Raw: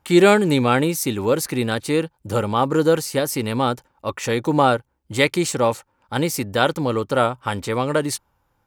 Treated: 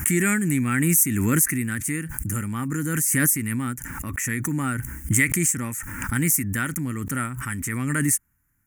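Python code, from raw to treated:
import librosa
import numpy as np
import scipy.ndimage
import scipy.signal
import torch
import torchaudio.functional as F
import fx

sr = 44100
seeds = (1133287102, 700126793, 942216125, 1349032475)

y = fx.curve_eq(x, sr, hz=(270.0, 510.0, 850.0, 1900.0, 4000.0, 6500.0, 10000.0), db=(0, -24, -20, 6, -24, 6, 12))
y = fx.pre_swell(y, sr, db_per_s=21.0)
y = F.gain(torch.from_numpy(y), -3.0).numpy()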